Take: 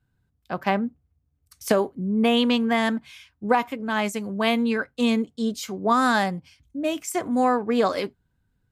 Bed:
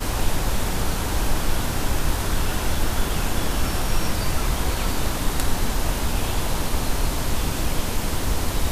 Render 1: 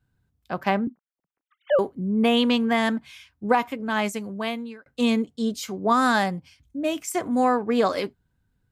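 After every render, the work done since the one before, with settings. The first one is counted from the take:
0:00.87–0:01.79: three sine waves on the formant tracks
0:04.05–0:04.86: fade out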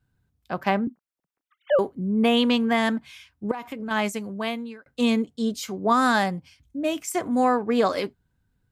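0:03.51–0:03.91: downward compressor 10 to 1, threshold −28 dBFS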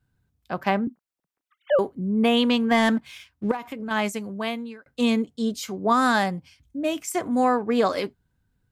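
0:02.71–0:03.57: leveller curve on the samples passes 1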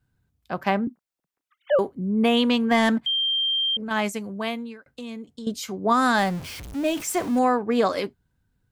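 0:03.06–0:03.77: beep over 3,170 Hz −20.5 dBFS
0:04.86–0:05.47: downward compressor, threshold −34 dBFS
0:06.18–0:07.39: converter with a step at zero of −32 dBFS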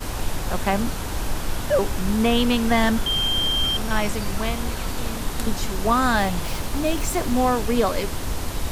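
mix in bed −4 dB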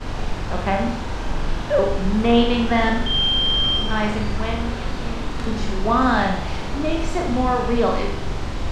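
high-frequency loss of the air 140 metres
flutter between parallel walls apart 7.3 metres, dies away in 0.7 s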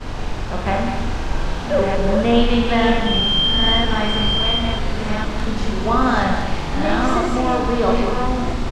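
delay that plays each chunk backwards 656 ms, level −3 dB
single-tap delay 195 ms −7.5 dB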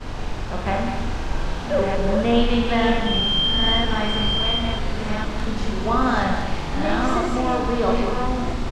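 level −3 dB

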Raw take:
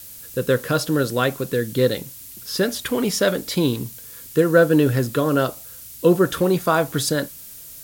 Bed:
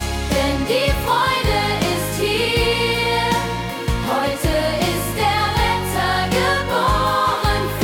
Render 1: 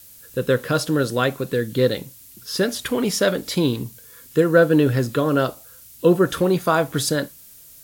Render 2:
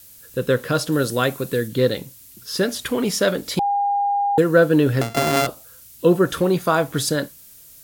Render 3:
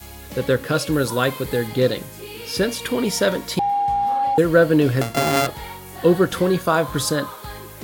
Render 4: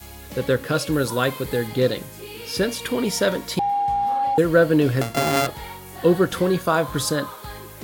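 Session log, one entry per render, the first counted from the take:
noise reduction from a noise print 6 dB
0:00.92–0:01.68: parametric band 12,000 Hz +6.5 dB 1.4 octaves; 0:03.59–0:04.38: beep over 808 Hz −17 dBFS; 0:05.01–0:05.47: samples sorted by size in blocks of 64 samples
mix in bed −17 dB
level −1.5 dB

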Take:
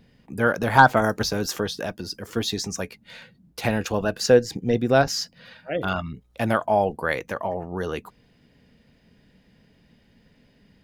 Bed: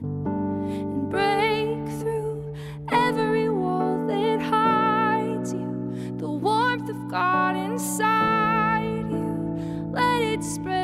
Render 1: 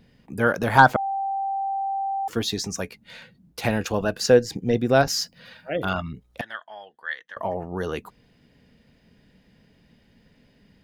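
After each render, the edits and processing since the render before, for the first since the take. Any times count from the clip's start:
0:00.96–0:02.28: beep over 783 Hz −23.5 dBFS
0:04.99–0:05.88: high-shelf EQ 8,700 Hz +7 dB
0:06.41–0:07.37: pair of resonant band-passes 2,400 Hz, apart 0.84 octaves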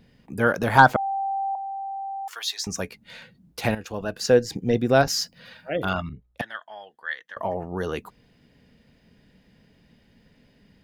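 0:01.55–0:02.67: high-pass filter 880 Hz 24 dB per octave
0:03.75–0:04.52: fade in, from −12.5 dB
0:06.09–0:06.61: multiband upward and downward expander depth 100%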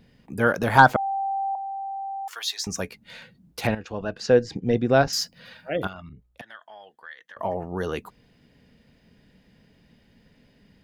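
0:03.67–0:05.13: high-frequency loss of the air 110 metres
0:05.87–0:07.39: downward compressor 2.5 to 1, threshold −42 dBFS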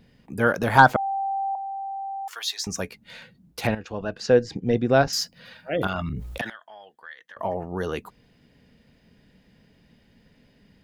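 0:05.73–0:06.50: envelope flattener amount 70%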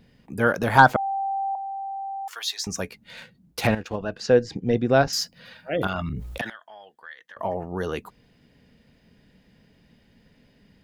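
0:03.17–0:03.96: leveller curve on the samples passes 1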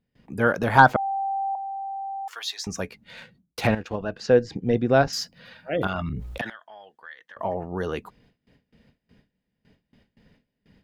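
noise gate with hold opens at −47 dBFS
high-shelf EQ 5,600 Hz −7.5 dB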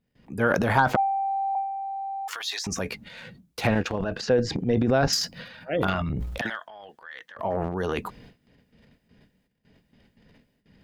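transient designer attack −1 dB, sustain +11 dB
downward compressor 5 to 1, threshold −17 dBFS, peak gain reduction 8 dB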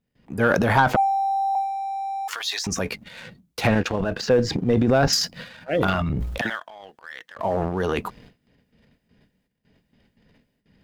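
leveller curve on the samples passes 1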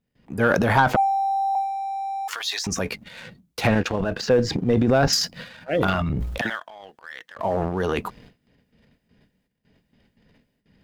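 no processing that can be heard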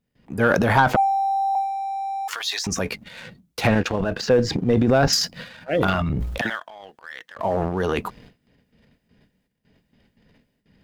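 level +1 dB

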